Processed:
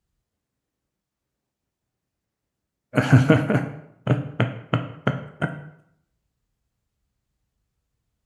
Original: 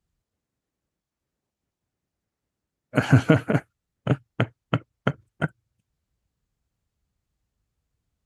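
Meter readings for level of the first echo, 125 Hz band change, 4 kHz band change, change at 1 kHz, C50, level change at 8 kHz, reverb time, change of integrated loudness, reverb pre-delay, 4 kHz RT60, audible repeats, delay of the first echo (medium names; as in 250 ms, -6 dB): no echo, +2.5 dB, +1.5 dB, +2.0 dB, 10.5 dB, no reading, 0.75 s, +2.0 dB, 11 ms, 0.55 s, no echo, no echo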